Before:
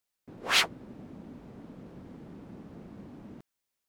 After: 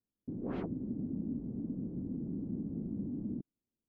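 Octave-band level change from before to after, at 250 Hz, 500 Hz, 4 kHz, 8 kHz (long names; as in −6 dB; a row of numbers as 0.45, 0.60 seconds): +9.5 dB, −1.0 dB, below −35 dB, below −40 dB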